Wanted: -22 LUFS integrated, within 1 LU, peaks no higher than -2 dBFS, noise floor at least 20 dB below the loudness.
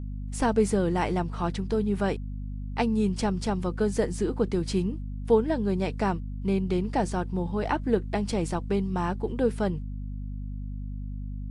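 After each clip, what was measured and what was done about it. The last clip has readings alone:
hum 50 Hz; harmonics up to 250 Hz; hum level -32 dBFS; loudness -28.5 LUFS; peak -10.5 dBFS; loudness target -22.0 LUFS
-> de-hum 50 Hz, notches 5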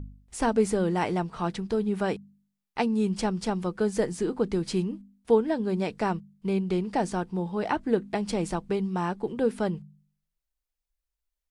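hum none; loudness -28.0 LUFS; peak -10.5 dBFS; loudness target -22.0 LUFS
-> gain +6 dB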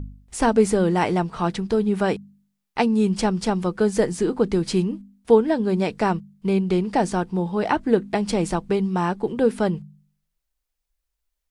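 loudness -22.0 LUFS; peak -4.5 dBFS; noise floor -80 dBFS

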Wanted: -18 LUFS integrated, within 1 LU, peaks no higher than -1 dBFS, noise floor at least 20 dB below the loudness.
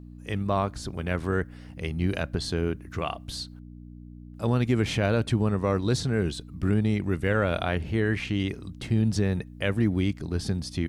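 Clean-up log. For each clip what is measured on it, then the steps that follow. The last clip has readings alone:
hum 60 Hz; harmonics up to 300 Hz; hum level -41 dBFS; loudness -27.5 LUFS; peak -11.5 dBFS; loudness target -18.0 LUFS
-> de-hum 60 Hz, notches 5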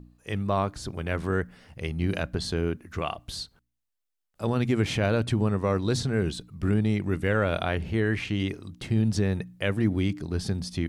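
hum none; loudness -28.0 LUFS; peak -11.5 dBFS; loudness target -18.0 LUFS
-> gain +10 dB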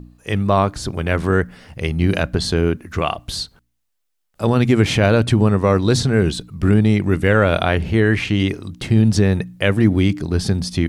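loudness -18.0 LUFS; peak -1.5 dBFS; noise floor -71 dBFS

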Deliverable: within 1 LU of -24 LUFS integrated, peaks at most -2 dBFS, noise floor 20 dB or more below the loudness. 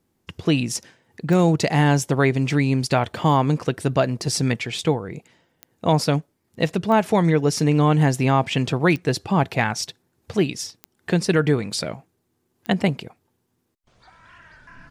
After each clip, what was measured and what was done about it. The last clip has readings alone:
clicks 6; loudness -21.0 LUFS; peak -5.0 dBFS; loudness target -24.0 LUFS
-> de-click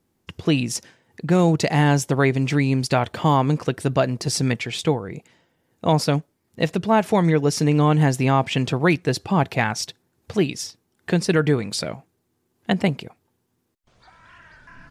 clicks 0; loudness -21.0 LUFS; peak -5.0 dBFS; loudness target -24.0 LUFS
-> gain -3 dB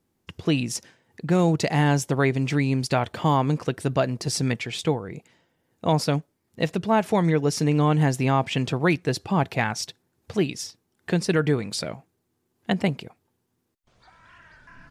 loudness -24.0 LUFS; peak -8.0 dBFS; noise floor -74 dBFS

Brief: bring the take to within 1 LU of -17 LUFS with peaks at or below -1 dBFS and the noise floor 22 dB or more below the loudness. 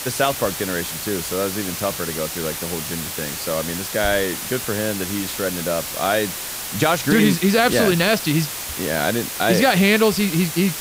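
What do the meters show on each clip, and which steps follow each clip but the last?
noise floor -30 dBFS; noise floor target -42 dBFS; loudness -20.0 LUFS; peak -4.5 dBFS; loudness target -17.0 LUFS
-> noise print and reduce 12 dB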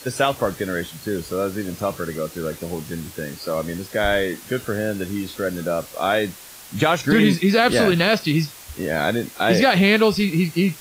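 noise floor -41 dBFS; noise floor target -43 dBFS
-> noise print and reduce 6 dB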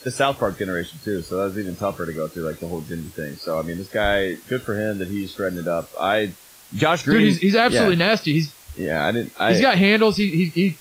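noise floor -47 dBFS; loudness -21.0 LUFS; peak -5.5 dBFS; loudness target -17.0 LUFS
-> gain +4 dB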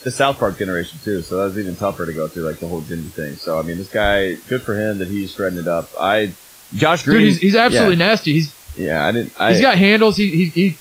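loudness -17.0 LUFS; peak -1.5 dBFS; noise floor -43 dBFS

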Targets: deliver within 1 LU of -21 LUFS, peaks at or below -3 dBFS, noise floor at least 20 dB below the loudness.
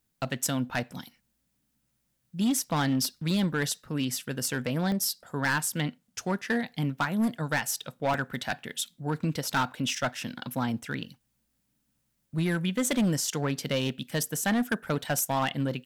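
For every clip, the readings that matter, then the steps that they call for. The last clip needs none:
clipped 1.3%; flat tops at -21.0 dBFS; dropouts 2; longest dropout 1.3 ms; loudness -29.5 LUFS; peak -21.0 dBFS; loudness target -21.0 LUFS
-> clip repair -21 dBFS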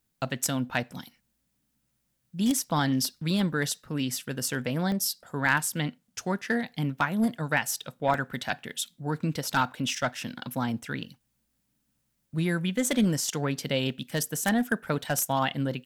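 clipped 0.0%; dropouts 2; longest dropout 1.3 ms
-> interpolate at 4.92/8.14, 1.3 ms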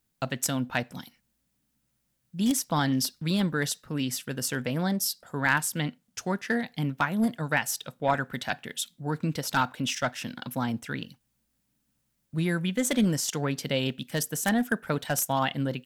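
dropouts 0; loudness -28.5 LUFS; peak -12.0 dBFS; loudness target -21.0 LUFS
-> gain +7.5 dB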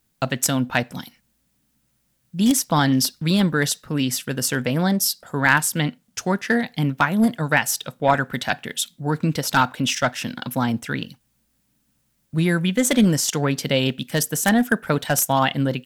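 loudness -21.0 LUFS; peak -4.5 dBFS; noise floor -68 dBFS

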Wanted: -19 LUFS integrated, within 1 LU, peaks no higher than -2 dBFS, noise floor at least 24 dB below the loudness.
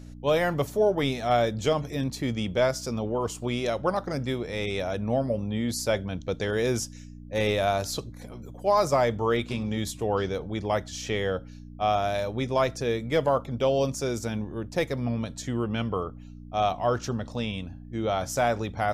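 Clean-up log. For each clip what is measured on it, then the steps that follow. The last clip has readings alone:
hum 60 Hz; harmonics up to 300 Hz; hum level -41 dBFS; loudness -27.5 LUFS; peak -12.5 dBFS; loudness target -19.0 LUFS
-> de-hum 60 Hz, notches 5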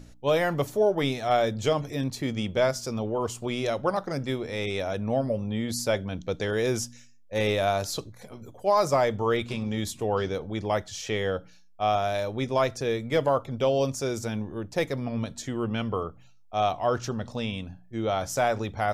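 hum none; loudness -28.0 LUFS; peak -12.5 dBFS; loudness target -19.0 LUFS
-> gain +9 dB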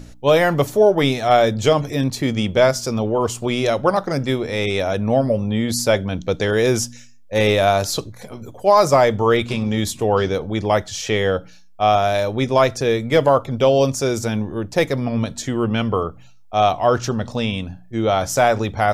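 loudness -19.0 LUFS; peak -3.5 dBFS; noise floor -43 dBFS

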